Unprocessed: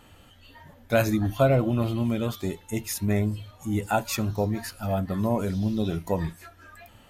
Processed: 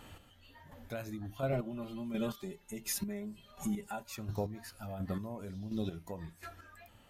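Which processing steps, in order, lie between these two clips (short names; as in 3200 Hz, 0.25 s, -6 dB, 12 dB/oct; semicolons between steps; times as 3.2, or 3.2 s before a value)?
1.52–4.03 comb 5 ms, depth 95%; compressor 2.5:1, threshold -36 dBFS, peak gain reduction 13.5 dB; chopper 1.4 Hz, depth 60%, duty 25%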